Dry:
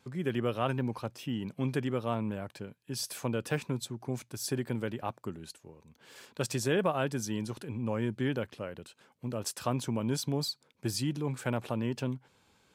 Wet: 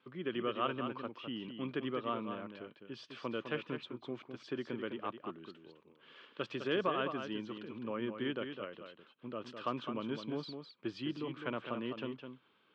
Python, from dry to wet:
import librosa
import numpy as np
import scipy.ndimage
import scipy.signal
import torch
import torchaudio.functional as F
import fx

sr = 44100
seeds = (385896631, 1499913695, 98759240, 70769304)

y = fx.cabinet(x, sr, low_hz=230.0, low_slope=12, high_hz=3400.0, hz=(330.0, 800.0, 1200.0, 3100.0), db=(4, -7, 8, 8))
y = y + 10.0 ** (-7.5 / 20.0) * np.pad(y, (int(207 * sr / 1000.0), 0))[:len(y)]
y = y * librosa.db_to_amplitude(-5.5)